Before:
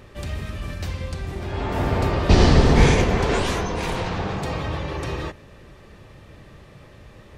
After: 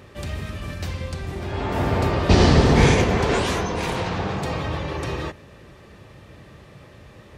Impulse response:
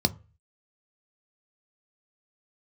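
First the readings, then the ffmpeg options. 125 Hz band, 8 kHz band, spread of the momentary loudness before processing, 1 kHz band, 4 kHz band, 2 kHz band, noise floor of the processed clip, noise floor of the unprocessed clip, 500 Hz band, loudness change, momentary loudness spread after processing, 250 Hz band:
0.0 dB, +1.0 dB, 16 LU, +1.0 dB, +1.0 dB, +1.0 dB, -47 dBFS, -47 dBFS, +1.0 dB, +0.5 dB, 16 LU, +1.0 dB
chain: -af "highpass=60,volume=1.12"

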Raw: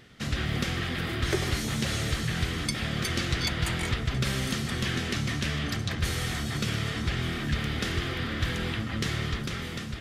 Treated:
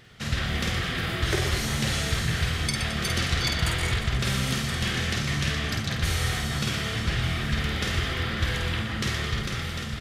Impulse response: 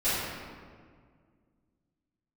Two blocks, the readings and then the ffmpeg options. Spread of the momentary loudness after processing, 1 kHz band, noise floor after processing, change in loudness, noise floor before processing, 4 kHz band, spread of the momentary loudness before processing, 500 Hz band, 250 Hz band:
3 LU, +3.5 dB, -32 dBFS, +3.0 dB, -35 dBFS, +3.5 dB, 3 LU, +1.5 dB, 0.0 dB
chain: -filter_complex "[0:a]equalizer=f=280:w=1.3:g=-5.5,asplit=2[s0][s1];[s1]aecho=0:1:50|120|218|355.2|547.3:0.631|0.398|0.251|0.158|0.1[s2];[s0][s2]amix=inputs=2:normalize=0,volume=1.19"

